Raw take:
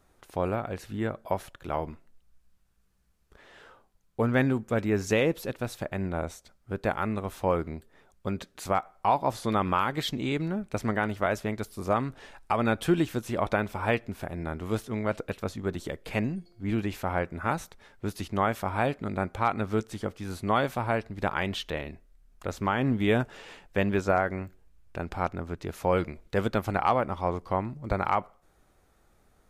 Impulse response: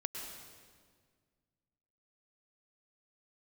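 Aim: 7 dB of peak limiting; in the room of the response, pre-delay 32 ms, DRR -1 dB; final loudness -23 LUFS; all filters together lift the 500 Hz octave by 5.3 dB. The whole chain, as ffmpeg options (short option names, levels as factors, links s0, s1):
-filter_complex "[0:a]equalizer=f=500:t=o:g=6.5,alimiter=limit=0.178:level=0:latency=1,asplit=2[s0][s1];[1:a]atrim=start_sample=2205,adelay=32[s2];[s1][s2]afir=irnorm=-1:irlink=0,volume=1.06[s3];[s0][s3]amix=inputs=2:normalize=0,volume=1.33"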